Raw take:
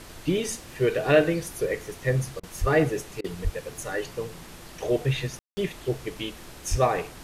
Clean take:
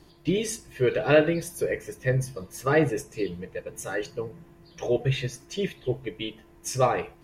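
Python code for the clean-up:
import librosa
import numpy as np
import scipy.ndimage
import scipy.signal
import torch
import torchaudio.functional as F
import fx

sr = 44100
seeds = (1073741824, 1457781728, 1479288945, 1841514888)

y = fx.fix_deplosive(x, sr, at_s=(2.6, 3.43, 6.7))
y = fx.fix_ambience(y, sr, seeds[0], print_start_s=4.32, print_end_s=4.82, start_s=5.39, end_s=5.57)
y = fx.fix_interpolate(y, sr, at_s=(2.4, 3.21), length_ms=31.0)
y = fx.noise_reduce(y, sr, print_start_s=4.32, print_end_s=4.82, reduce_db=9.0)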